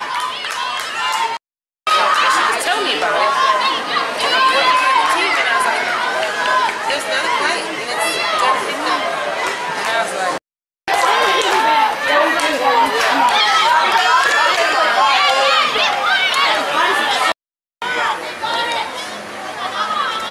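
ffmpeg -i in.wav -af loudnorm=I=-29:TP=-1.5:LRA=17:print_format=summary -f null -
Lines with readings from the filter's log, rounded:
Input Integrated:    -15.5 LUFS
Input True Peak:      -1.3 dBTP
Input LRA:             7.6 LU
Input Threshold:     -25.7 LUFS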